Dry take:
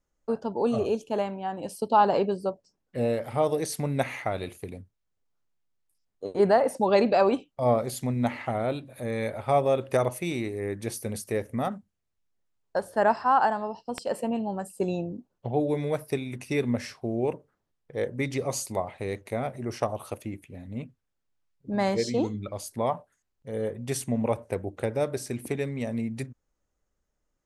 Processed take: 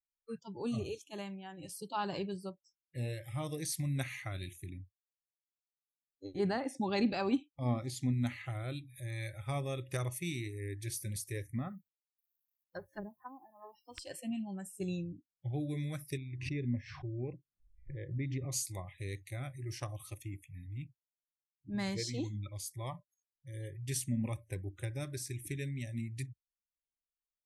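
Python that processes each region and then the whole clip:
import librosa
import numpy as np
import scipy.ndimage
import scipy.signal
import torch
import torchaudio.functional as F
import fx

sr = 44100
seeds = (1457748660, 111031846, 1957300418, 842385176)

y = fx.chain(x, sr, fx.lowpass(hz=7100.0, slope=12),
    fx.small_body(hz=(280.0, 800.0), ring_ms=40, db=8), at=(4.66, 8.13))
y = fx.chain(y, sr, fx.env_lowpass_down(base_hz=300.0, full_db=-19.5),
    fx.quant_dither(seeds[0], bits=12, dither='none'), at=(11.56, 13.99))
y = fx.chain(y, sr, fx.spacing_loss(db_at_10k=37),
    fx.pre_swell(db_per_s=79.0), at=(16.17, 18.52))
y = fx.noise_reduce_blind(y, sr, reduce_db=29)
y = fx.tone_stack(y, sr, knobs='6-0-2')
y = y * 10.0 ** (11.5 / 20.0)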